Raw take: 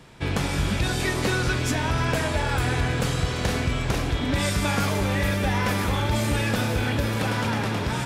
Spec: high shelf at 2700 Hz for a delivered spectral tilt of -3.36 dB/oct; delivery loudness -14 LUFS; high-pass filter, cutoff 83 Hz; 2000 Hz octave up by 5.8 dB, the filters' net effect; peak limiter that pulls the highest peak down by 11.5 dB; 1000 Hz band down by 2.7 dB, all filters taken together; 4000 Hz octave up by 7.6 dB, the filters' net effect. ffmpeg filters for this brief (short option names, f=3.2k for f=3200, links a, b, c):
-af "highpass=83,equalizer=f=1k:t=o:g=-6.5,equalizer=f=2k:t=o:g=6,highshelf=f=2.7k:g=6,equalizer=f=4k:t=o:g=3,volume=13.5dB,alimiter=limit=-6.5dB:level=0:latency=1"